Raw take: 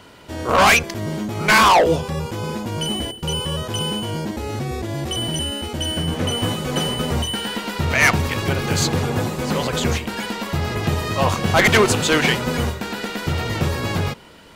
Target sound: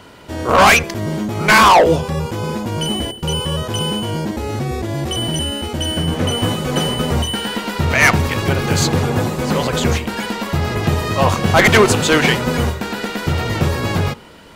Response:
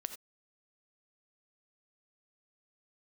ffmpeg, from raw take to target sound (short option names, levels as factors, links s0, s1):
-filter_complex "[0:a]asplit=2[s0][s1];[1:a]atrim=start_sample=2205,lowpass=2400[s2];[s1][s2]afir=irnorm=-1:irlink=0,volume=0.266[s3];[s0][s3]amix=inputs=2:normalize=0,volume=1.33"